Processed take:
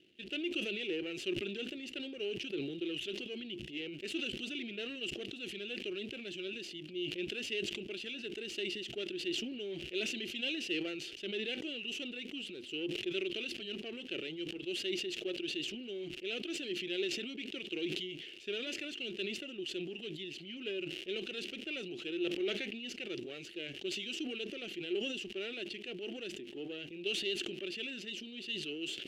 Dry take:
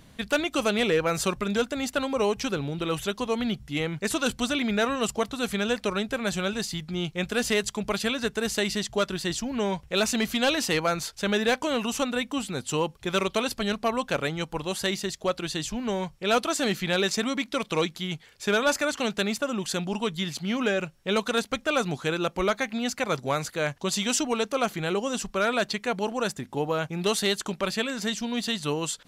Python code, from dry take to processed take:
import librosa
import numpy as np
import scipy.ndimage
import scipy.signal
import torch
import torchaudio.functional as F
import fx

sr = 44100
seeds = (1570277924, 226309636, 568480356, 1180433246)

y = np.where(x < 0.0, 10.0 ** (-12.0 / 20.0) * x, x)
y = fx.dmg_crackle(y, sr, seeds[0], per_s=180.0, level_db=-43.0)
y = fx.double_bandpass(y, sr, hz=1000.0, octaves=3.0)
y = fx.sustainer(y, sr, db_per_s=35.0)